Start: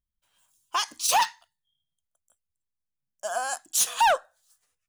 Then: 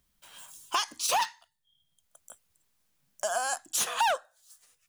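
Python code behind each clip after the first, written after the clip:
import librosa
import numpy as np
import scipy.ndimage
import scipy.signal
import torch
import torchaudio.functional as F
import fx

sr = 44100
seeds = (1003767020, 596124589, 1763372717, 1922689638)

y = fx.band_squash(x, sr, depth_pct=70)
y = y * librosa.db_to_amplitude(-2.0)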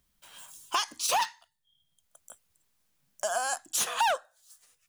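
y = x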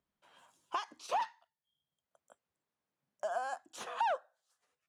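y = fx.bandpass_q(x, sr, hz=530.0, q=0.55)
y = y * librosa.db_to_amplitude(-4.5)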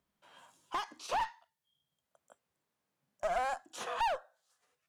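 y = fx.hpss(x, sr, part='percussive', gain_db=-6)
y = fx.clip_asym(y, sr, top_db=-40.0, bottom_db=-31.5)
y = y * librosa.db_to_amplitude(7.0)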